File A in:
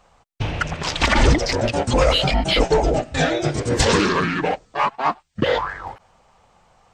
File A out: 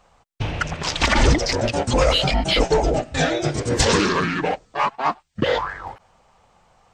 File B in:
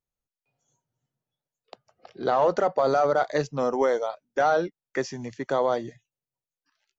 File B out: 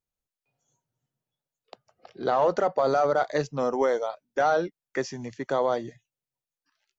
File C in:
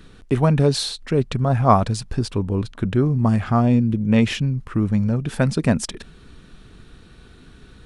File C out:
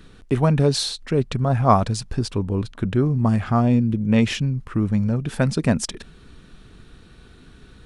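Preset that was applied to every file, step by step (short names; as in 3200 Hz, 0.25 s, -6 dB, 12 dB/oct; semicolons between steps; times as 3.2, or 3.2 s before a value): dynamic EQ 6000 Hz, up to +3 dB, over -37 dBFS, Q 1.3; gain -1 dB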